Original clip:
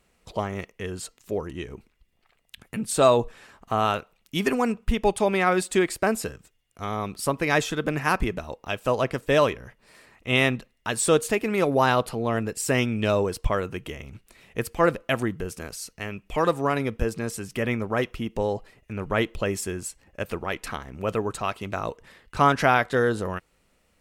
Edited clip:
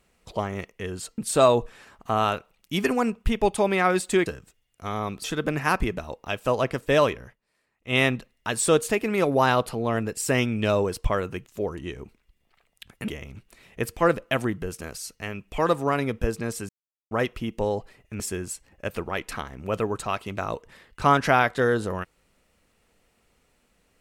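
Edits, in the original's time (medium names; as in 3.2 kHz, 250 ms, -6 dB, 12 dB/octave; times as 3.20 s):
1.18–2.80 s: move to 13.86 s
5.88–6.23 s: delete
7.21–7.64 s: delete
9.62–10.38 s: dip -20.5 dB, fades 0.18 s
17.47–17.89 s: mute
18.98–19.55 s: delete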